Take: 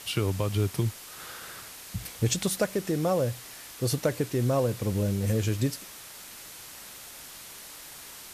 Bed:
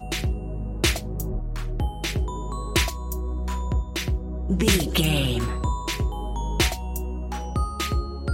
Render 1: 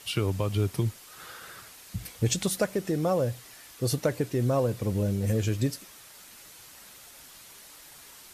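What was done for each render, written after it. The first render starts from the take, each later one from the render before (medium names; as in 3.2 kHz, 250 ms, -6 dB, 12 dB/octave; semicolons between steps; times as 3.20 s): noise reduction 6 dB, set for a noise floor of -45 dBFS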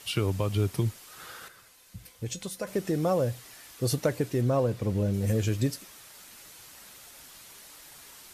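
1.48–2.67 s: feedback comb 510 Hz, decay 0.16 s, mix 70%; 4.41–5.14 s: treble shelf 6.5 kHz -8.5 dB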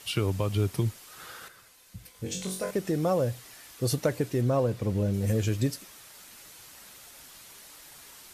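2.12–2.71 s: flutter echo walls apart 3.7 m, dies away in 0.41 s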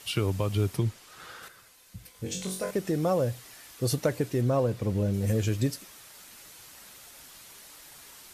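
0.77–1.43 s: treble shelf 9.5 kHz -11 dB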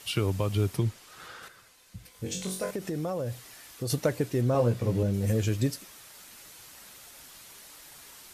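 1.28–2.12 s: treble shelf 12 kHz -8.5 dB; 2.66–3.90 s: compression, threshold -28 dBFS; 4.53–5.03 s: doubling 17 ms -3 dB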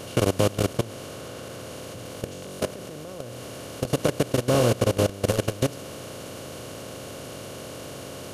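spectral levelling over time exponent 0.2; level held to a coarse grid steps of 19 dB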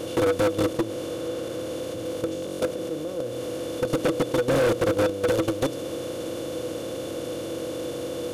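small resonant body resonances 330/490/3500 Hz, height 17 dB, ringing for 95 ms; saturation -18 dBFS, distortion -6 dB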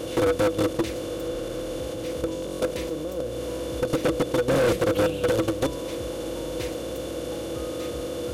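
add bed -15.5 dB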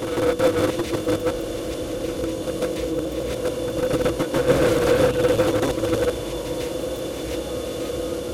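chunks repeated in reverse 436 ms, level -0.5 dB; reverse echo 149 ms -5.5 dB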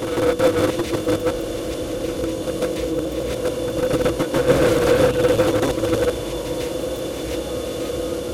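trim +2 dB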